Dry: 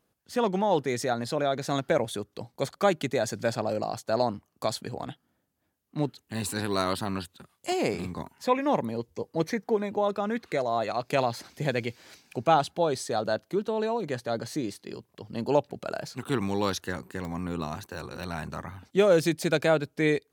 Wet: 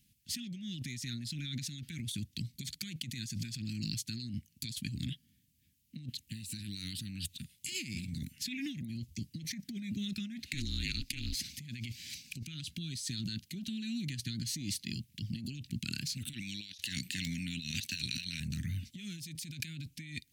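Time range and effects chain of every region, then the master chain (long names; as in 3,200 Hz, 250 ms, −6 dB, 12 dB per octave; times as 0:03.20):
0:10.53–0:11.35: ring modulation 150 Hz + multiband upward and downward compressor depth 40%
0:16.33–0:18.40: meter weighting curve D + one half of a high-frequency compander decoder only
whole clip: inverse Chebyshev band-stop filter 480–1,100 Hz, stop band 60 dB; parametric band 190 Hz −3.5 dB 0.34 octaves; compressor whose output falls as the input rises −43 dBFS, ratio −1; level +3 dB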